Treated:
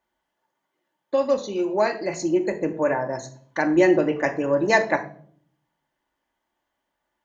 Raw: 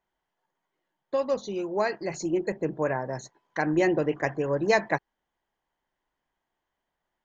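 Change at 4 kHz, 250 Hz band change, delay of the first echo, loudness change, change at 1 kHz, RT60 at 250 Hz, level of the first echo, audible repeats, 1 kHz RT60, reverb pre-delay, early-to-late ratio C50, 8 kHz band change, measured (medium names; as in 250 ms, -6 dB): +4.0 dB, +6.0 dB, no echo, +5.0 dB, +4.5 dB, 0.90 s, no echo, no echo, 0.45 s, 3 ms, 14.0 dB, no reading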